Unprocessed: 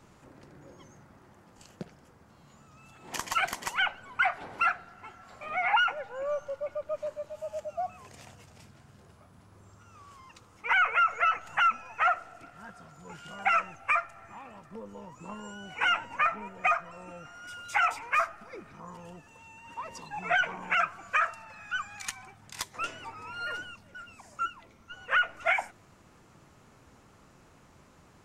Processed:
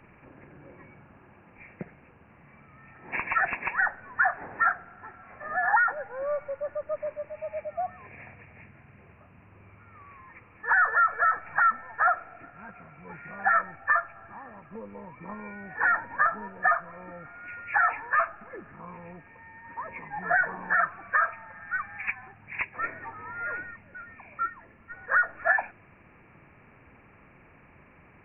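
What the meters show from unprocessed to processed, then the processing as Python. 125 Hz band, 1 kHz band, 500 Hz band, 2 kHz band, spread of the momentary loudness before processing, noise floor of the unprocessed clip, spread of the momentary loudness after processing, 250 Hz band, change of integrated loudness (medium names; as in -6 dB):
+2.0 dB, +2.0 dB, +2.0 dB, +3.5 dB, 21 LU, -58 dBFS, 21 LU, +2.0 dB, +2.5 dB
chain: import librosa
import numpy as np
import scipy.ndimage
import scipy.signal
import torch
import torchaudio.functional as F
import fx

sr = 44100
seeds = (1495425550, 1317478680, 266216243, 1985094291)

y = fx.freq_compress(x, sr, knee_hz=1600.0, ratio=4.0)
y = y * librosa.db_to_amplitude(2.0)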